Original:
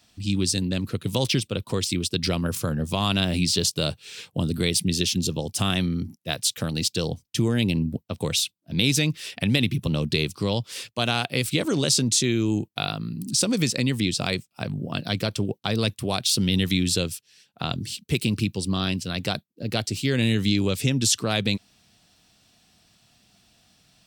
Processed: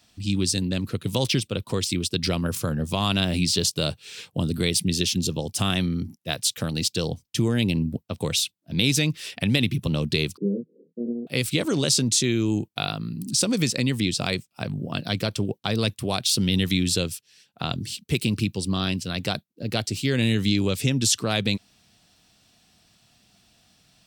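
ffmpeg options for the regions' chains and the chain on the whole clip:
ffmpeg -i in.wav -filter_complex "[0:a]asettb=1/sr,asplit=3[link_01][link_02][link_03];[link_01]atrim=end=10.374[link_04];[link_02]atrim=start=10.37:end=11.27,asetpts=PTS-STARTPTS,afade=type=in:duration=0.004:curve=qsin,afade=type=out:start_time=0.896:duration=0.004:curve=qsin,asuperpass=centerf=280:order=12:qfactor=0.91,asplit=2[link_05][link_06];[link_06]adelay=25,volume=-3.5dB[link_07];[link_05][link_07]amix=inputs=2:normalize=0,atrim=end_sample=39690[link_08];[link_03]atrim=start=11.266[link_09];[link_04][link_08]acrossfade=duration=0.004:curve1=hsin:curve2=qsin[link_10];[link_10][link_09]acrossfade=duration=0.004:curve1=qsin:curve2=hsin" out.wav

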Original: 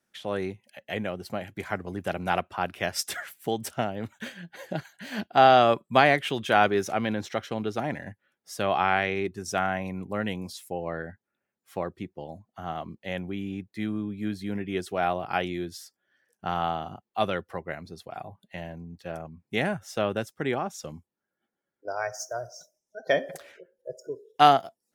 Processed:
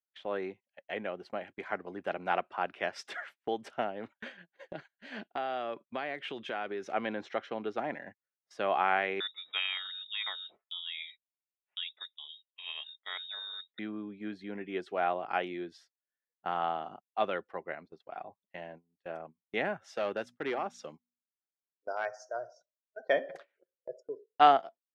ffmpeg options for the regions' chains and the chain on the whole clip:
ffmpeg -i in.wav -filter_complex "[0:a]asettb=1/sr,asplit=3[link_01][link_02][link_03];[link_01]atrim=end=4.514[link_04];[link_02]atrim=start=4.51:end=6.94,asetpts=PTS-STARTPTS,afade=type=in:duration=0.004:curve=qsin,afade=type=out:start_time=2.426:duration=0.004:curve=qsin,equalizer=frequency=940:width=1:gain=-4.5,acompressor=threshold=-28dB:ratio=4:attack=3.2:release=140:knee=1:detection=peak[link_05];[link_03]atrim=start=6.936[link_06];[link_04][link_05]acrossfade=duration=0.004:curve1=hsin:curve2=qsin[link_07];[link_07][link_06]acrossfade=duration=0.004:curve1=qsin:curve2=hsin,asettb=1/sr,asplit=3[link_08][link_09][link_10];[link_08]atrim=end=9.204[link_11];[link_09]atrim=start=9.2:end=13.79,asetpts=PTS-STARTPTS,afade=type=in:duration=0.004:curve=qsin,afade=type=out:start_time=4.586:duration=0.004:curve=qsin,aecho=1:1:4.6:0.32,atrim=end_sample=202419,lowpass=frequency=3300:width_type=q:width=0.5098,lowpass=frequency=3300:width_type=q:width=0.6013,lowpass=frequency=3300:width_type=q:width=0.9,lowpass=frequency=3300:width_type=q:width=2.563,afreqshift=-3900[link_12];[link_10]atrim=start=13.786[link_13];[link_11][link_12]acrossfade=duration=0.004:curve1=hsin:curve2=qsin[link_14];[link_14][link_13]acrossfade=duration=0.004:curve1=qsin:curve2=hsin,asettb=1/sr,asplit=3[link_15][link_16][link_17];[link_15]atrim=end=19.844[link_18];[link_16]atrim=start=19.84:end=22.06,asetpts=PTS-STARTPTS,afade=type=in:duration=0.004:curve=qsin,afade=type=out:start_time=2.216:duration=0.004:curve=qsin,highshelf=frequency=3800:gain=8.5,asoftclip=type=hard:threshold=-21.5dB,bandreject=frequency=60.49:width_type=h:width=4,bandreject=frequency=120.98:width_type=h:width=4,bandreject=frequency=181.47:width_type=h:width=4,bandreject=frequency=241.96:width_type=h:width=4[link_19];[link_17]atrim=start=22.056[link_20];[link_18][link_19]acrossfade=duration=0.004:curve1=hsin:curve2=qsin[link_21];[link_21][link_20]acrossfade=duration=0.004:curve1=qsin:curve2=hsin,highpass=310,agate=range=-24dB:threshold=-44dB:ratio=16:detection=peak,lowpass=2800,volume=-3.5dB" out.wav

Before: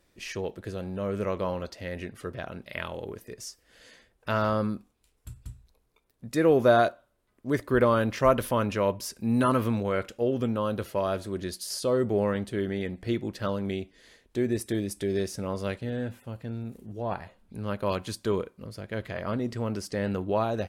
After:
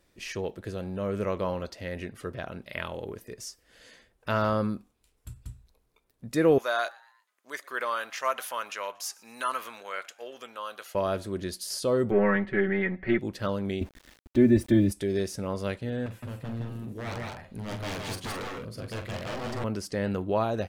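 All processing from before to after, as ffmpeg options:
ffmpeg -i in.wav -filter_complex "[0:a]asettb=1/sr,asplit=3[link_01][link_02][link_03];[link_01]atrim=end=6.584[link_04];[link_02]atrim=start=6.58:end=10.95,asetpts=PTS-STARTPTS,afade=type=in:duration=0.004:curve=qsin,afade=type=out:start_time=4.366:duration=0.004:curve=qsin,highpass=1100,equalizer=frequency=6600:width_type=o:width=0.21:gain=5.5,asplit=4[link_05][link_06][link_07][link_08];[link_06]adelay=118,afreqshift=110,volume=-24dB[link_09];[link_07]adelay=236,afreqshift=220,volume=-30.6dB[link_10];[link_08]adelay=354,afreqshift=330,volume=-37.1dB[link_11];[link_05][link_09][link_10][link_11]amix=inputs=4:normalize=0,atrim=end_sample=192717[link_12];[link_03]atrim=start=10.946[link_13];[link_04][link_12]acrossfade=duration=0.004:curve1=hsin:curve2=qsin[link_14];[link_14][link_13]acrossfade=duration=0.004:curve1=qsin:curve2=hsin,asettb=1/sr,asplit=3[link_15][link_16][link_17];[link_15]atrim=end=12.114[link_18];[link_16]atrim=start=12.11:end=13.19,asetpts=PTS-STARTPTS,afade=type=in:duration=0.004:curve=qsin,afade=type=out:start_time=1.076:duration=0.004:curve=qsin,aeval=exprs='if(lt(val(0),0),0.708*val(0),val(0))':channel_layout=same,lowpass=frequency=1900:width_type=q:width=3.8,aecho=1:1:5.3:0.99,atrim=end_sample=47628[link_19];[link_17]atrim=start=13.186[link_20];[link_18][link_19]acrossfade=duration=0.004:curve1=hsin:curve2=qsin[link_21];[link_21][link_20]acrossfade=duration=0.004:curve1=qsin:curve2=hsin,asettb=1/sr,asplit=3[link_22][link_23][link_24];[link_22]atrim=end=13.814[link_25];[link_23]atrim=start=13.81:end=14.92,asetpts=PTS-STARTPTS,afade=type=in:duration=0.004:curve=qsin,afade=type=out:start_time=1.106:duration=0.004:curve=qsin,bass=frequency=250:gain=11,treble=frequency=4000:gain=-10,aecho=1:1:3.4:0.97,atrim=end_sample=48951,aeval=exprs='val(0)*gte(abs(val(0)),0.00473)':channel_layout=same[link_26];[link_24]atrim=start=14.916[link_27];[link_25][link_26]acrossfade=duration=0.004:curve1=hsin:curve2=qsin[link_28];[link_28][link_27]acrossfade=duration=0.004:curve1=qsin:curve2=hsin,asettb=1/sr,asplit=3[link_29][link_30][link_31];[link_29]atrim=end=16.064[link_32];[link_30]atrim=start=16.06:end=19.64,asetpts=PTS-STARTPTS,afade=type=in:duration=0.004:curve=qsin,afade=type=out:start_time=3.576:duration=0.004:curve=qsin,aeval=exprs='0.0282*(abs(mod(val(0)/0.0282+3,4)-2)-1)':channel_layout=same,aecho=1:1:43|163|171|212:0.355|0.631|0.473|0.335,atrim=end_sample=157878[link_33];[link_31]atrim=start=19.636[link_34];[link_32][link_33]acrossfade=duration=0.004:curve1=hsin:curve2=qsin[link_35];[link_35][link_34]acrossfade=duration=0.004:curve1=qsin:curve2=hsin" out.wav

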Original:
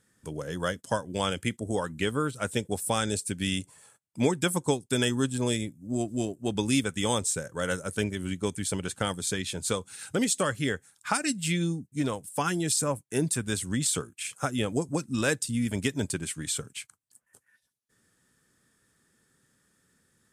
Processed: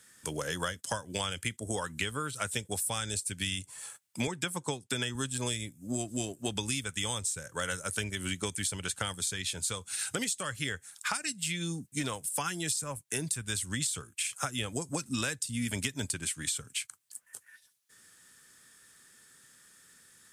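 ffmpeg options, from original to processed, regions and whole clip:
ffmpeg -i in.wav -filter_complex "[0:a]asettb=1/sr,asplit=3[link_01][link_02][link_03];[link_01]atrim=end=4.274[link_04];[link_02]atrim=start=4.27:end=5.15,asetpts=PTS-STARTPTS,afade=type=in:duration=0.004:curve=qsin,afade=type=out:start_time=0.876:duration=0.004:curve=qsin,highpass=93,aemphasis=mode=reproduction:type=cd[link_05];[link_03]atrim=start=5.146[link_06];[link_04][link_05]acrossfade=duration=0.004:curve1=hsin:curve2=qsin[link_07];[link_07][link_06]acrossfade=duration=0.004:curve1=qsin:curve2=hsin,asettb=1/sr,asplit=3[link_08][link_09][link_10];[link_08]atrim=end=15.064[link_11];[link_09]atrim=start=15.06:end=16.8,asetpts=PTS-STARTPTS,afade=type=in:duration=0.004:curve=qsin,afade=type=out:start_time=1.736:duration=0.004:curve=qsin,equalizer=frequency=250:width=4.3:gain=3.5,acompressor=mode=upward:threshold=-46dB:ratio=2.5:attack=3.2:release=140:knee=2.83:detection=peak[link_12];[link_10]atrim=start=16.796[link_13];[link_11][link_12]acrossfade=duration=0.004:curve1=hsin:curve2=qsin[link_14];[link_14][link_13]acrossfade=duration=0.004:curve1=qsin:curve2=hsin,tiltshelf=frequency=880:gain=-7.5,acrossover=split=120[link_15][link_16];[link_16]acompressor=threshold=-36dB:ratio=10[link_17];[link_15][link_17]amix=inputs=2:normalize=0,volume=5.5dB" out.wav

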